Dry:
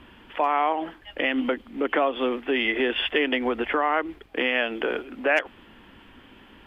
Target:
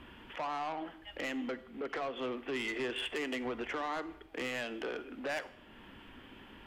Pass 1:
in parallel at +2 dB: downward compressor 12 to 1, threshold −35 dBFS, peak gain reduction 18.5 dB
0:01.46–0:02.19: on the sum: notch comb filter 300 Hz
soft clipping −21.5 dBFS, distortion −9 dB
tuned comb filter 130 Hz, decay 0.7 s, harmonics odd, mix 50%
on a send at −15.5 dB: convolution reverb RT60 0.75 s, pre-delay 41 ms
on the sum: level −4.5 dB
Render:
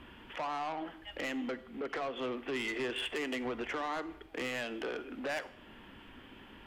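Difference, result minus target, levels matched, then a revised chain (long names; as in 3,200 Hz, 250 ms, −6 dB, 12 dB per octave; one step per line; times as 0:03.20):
downward compressor: peak gain reduction −7 dB
in parallel at +2 dB: downward compressor 12 to 1, threshold −42.5 dBFS, peak gain reduction 25.5 dB
0:01.46–0:02.19: on the sum: notch comb filter 300 Hz
soft clipping −21.5 dBFS, distortion −10 dB
tuned comb filter 130 Hz, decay 0.7 s, harmonics odd, mix 50%
on a send at −15.5 dB: convolution reverb RT60 0.75 s, pre-delay 41 ms
on the sum: level −4.5 dB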